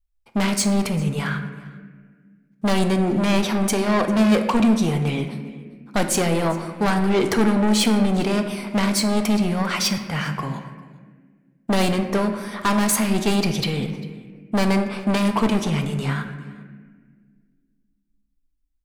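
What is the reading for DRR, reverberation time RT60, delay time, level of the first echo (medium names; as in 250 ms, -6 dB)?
6.0 dB, 1.6 s, 398 ms, -22.5 dB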